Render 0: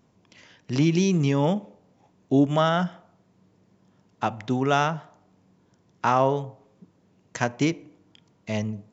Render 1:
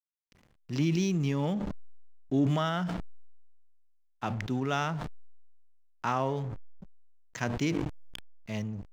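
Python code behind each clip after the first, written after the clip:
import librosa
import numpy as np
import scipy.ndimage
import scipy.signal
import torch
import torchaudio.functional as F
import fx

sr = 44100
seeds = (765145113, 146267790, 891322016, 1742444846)

y = fx.peak_eq(x, sr, hz=630.0, db=-5.0, octaves=1.5)
y = fx.backlash(y, sr, play_db=-41.0)
y = fx.sustainer(y, sr, db_per_s=29.0)
y = y * librosa.db_to_amplitude(-6.0)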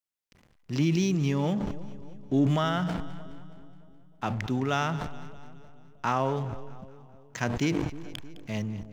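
y = fx.echo_split(x, sr, split_hz=690.0, low_ms=311, high_ms=210, feedback_pct=52, wet_db=-15.5)
y = y * librosa.db_to_amplitude(2.5)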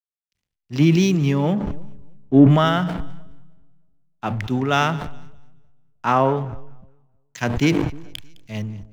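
y = fx.dynamic_eq(x, sr, hz=6200.0, q=1.1, threshold_db=-53.0, ratio=4.0, max_db=-6)
y = fx.band_widen(y, sr, depth_pct=100)
y = y * librosa.db_to_amplitude(7.5)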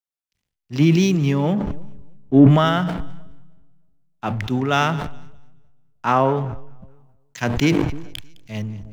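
y = fx.sustainer(x, sr, db_per_s=47.0)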